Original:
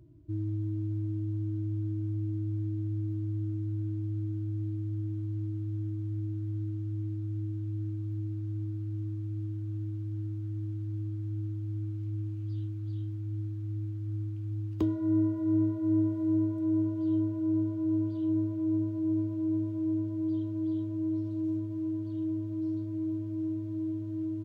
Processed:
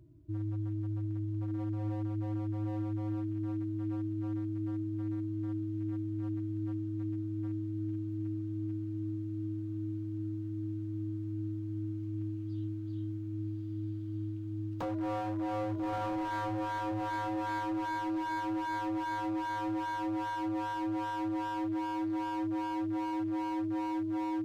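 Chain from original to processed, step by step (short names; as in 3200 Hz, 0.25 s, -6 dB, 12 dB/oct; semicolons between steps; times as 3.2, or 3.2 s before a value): diffused feedback echo 1.211 s, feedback 44%, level -4 dB; wavefolder -27 dBFS; gain -2.5 dB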